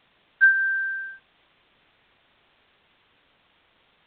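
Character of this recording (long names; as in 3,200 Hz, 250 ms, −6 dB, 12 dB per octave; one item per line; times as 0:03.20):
a quantiser's noise floor 10 bits, dither triangular
G.726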